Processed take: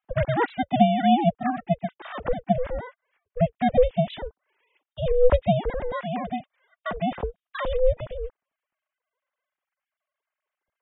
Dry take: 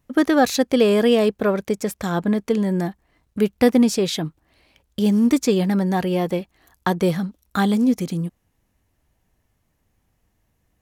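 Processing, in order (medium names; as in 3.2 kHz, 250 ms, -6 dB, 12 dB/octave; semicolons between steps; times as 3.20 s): formants replaced by sine waves; ring modulator 250 Hz; trim -1 dB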